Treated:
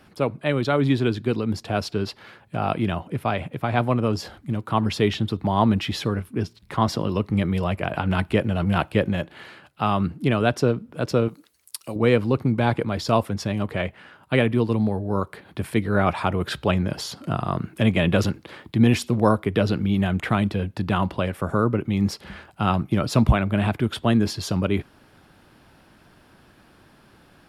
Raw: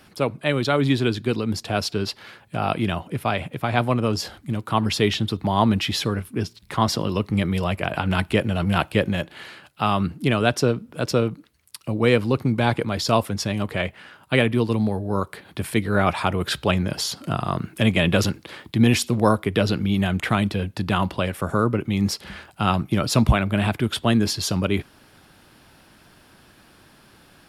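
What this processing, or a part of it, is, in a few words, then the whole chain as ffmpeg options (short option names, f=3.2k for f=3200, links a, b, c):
behind a face mask: -filter_complex "[0:a]asettb=1/sr,asplit=3[a][b][c];[a]atrim=end=11.284[d];[b]atrim=start=11.28:end=11.96,asetpts=PTS-STARTPTS,afade=t=in:d=0.004:c=qsin,afade=t=out:st=0.676:d=0.004:c=qsin,bass=f=250:g=-12,treble=f=4k:g=14[e];[c]atrim=start=11.956[f];[d][e]acrossfade=d=0.004:c1=hsin:c2=qsin[g];[g][f]acrossfade=d=0.004:c1=qsin:c2=hsin,highshelf=f=2.6k:g=-8"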